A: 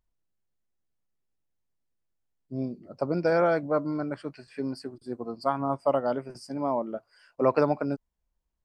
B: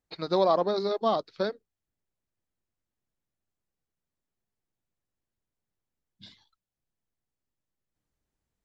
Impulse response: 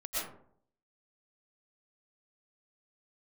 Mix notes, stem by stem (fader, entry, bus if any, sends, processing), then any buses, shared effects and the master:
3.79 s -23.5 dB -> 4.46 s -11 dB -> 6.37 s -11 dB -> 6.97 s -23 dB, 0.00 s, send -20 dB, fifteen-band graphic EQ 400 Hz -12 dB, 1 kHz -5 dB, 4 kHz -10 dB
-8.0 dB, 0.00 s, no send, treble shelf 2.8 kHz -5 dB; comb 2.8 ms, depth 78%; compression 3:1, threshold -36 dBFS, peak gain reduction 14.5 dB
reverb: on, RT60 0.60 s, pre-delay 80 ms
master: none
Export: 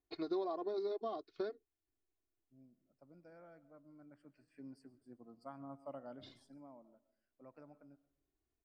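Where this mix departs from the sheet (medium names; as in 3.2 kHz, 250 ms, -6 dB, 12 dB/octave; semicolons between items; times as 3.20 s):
stem A -23.5 dB -> -34.0 dB; master: extra peaking EQ 330 Hz +7 dB 1.1 oct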